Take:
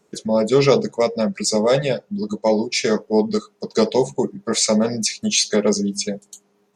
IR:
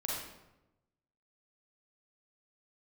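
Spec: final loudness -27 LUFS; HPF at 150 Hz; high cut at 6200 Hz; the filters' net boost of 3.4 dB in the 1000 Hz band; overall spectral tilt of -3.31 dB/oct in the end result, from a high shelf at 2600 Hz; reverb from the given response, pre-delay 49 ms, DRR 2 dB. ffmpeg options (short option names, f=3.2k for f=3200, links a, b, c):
-filter_complex "[0:a]highpass=150,lowpass=6.2k,equalizer=f=1k:t=o:g=3.5,highshelf=f=2.6k:g=5.5,asplit=2[a][b];[1:a]atrim=start_sample=2205,adelay=49[c];[b][c]afir=irnorm=-1:irlink=0,volume=-5.5dB[d];[a][d]amix=inputs=2:normalize=0,volume=-10.5dB"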